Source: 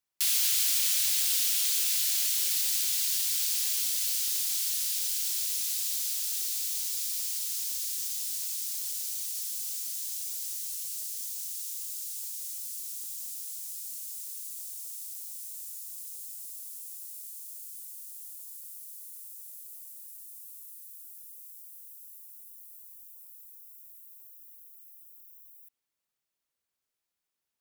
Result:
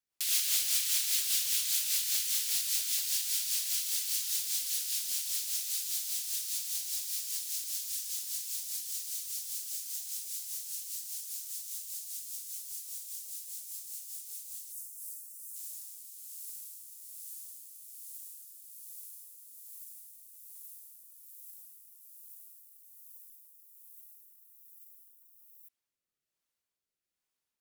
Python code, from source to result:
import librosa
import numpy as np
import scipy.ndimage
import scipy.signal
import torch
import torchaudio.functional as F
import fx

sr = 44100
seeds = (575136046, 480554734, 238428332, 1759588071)

y = fx.spec_expand(x, sr, power=1.9, at=(14.72, 15.56))
y = fx.rotary_switch(y, sr, hz=5.0, then_hz=1.2, switch_at_s=14.49)